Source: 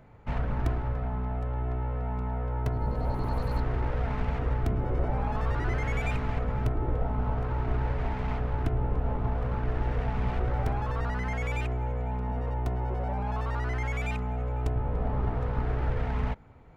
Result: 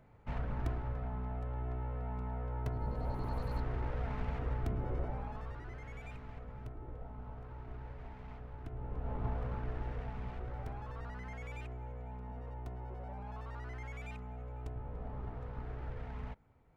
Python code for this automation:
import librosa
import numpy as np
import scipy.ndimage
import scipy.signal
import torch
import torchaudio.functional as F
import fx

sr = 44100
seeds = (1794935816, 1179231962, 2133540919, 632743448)

y = fx.gain(x, sr, db=fx.line((4.93, -8.0), (5.66, -18.0), (8.61, -18.0), (9.25, -7.0), (10.36, -14.0)))